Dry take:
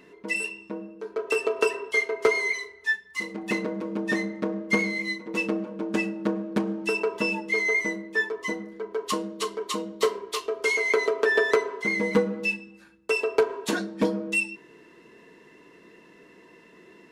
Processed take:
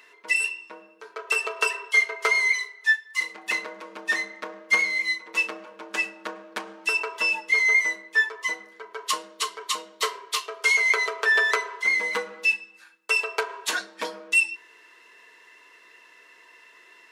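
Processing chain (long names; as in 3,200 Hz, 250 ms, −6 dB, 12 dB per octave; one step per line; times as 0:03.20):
high-pass filter 1,100 Hz 12 dB per octave
level +5.5 dB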